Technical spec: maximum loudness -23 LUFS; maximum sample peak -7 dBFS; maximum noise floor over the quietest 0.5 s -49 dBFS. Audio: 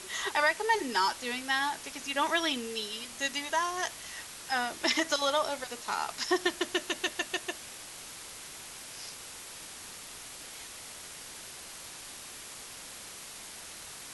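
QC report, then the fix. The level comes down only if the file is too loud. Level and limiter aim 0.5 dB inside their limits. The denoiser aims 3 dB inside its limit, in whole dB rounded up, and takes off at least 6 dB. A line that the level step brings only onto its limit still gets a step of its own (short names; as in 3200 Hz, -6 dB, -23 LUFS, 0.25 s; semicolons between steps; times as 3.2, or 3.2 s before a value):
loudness -33.0 LUFS: OK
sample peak -12.5 dBFS: OK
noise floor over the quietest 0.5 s -46 dBFS: fail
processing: denoiser 6 dB, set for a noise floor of -46 dBFS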